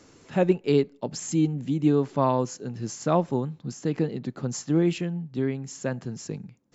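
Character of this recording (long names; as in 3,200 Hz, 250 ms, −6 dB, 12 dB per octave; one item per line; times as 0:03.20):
background noise floor −56 dBFS
spectral slope −7.0 dB per octave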